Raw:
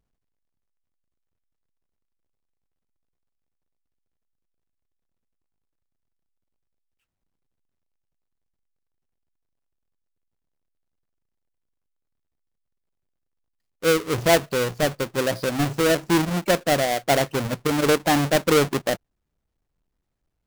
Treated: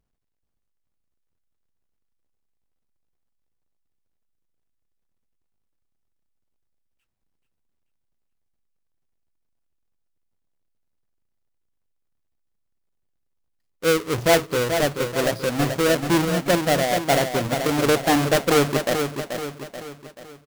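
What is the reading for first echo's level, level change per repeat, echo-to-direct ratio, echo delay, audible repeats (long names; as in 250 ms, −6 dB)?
−7.0 dB, −6.5 dB, −6.0 dB, 433 ms, 5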